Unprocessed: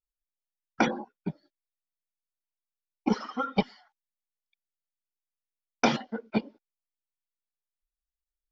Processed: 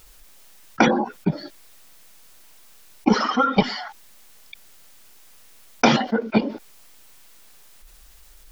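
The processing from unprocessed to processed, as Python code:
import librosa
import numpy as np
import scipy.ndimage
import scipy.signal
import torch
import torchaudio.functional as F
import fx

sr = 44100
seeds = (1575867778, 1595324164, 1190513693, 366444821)

y = fx.env_flatten(x, sr, amount_pct=50)
y = y * 10.0 ** (6.5 / 20.0)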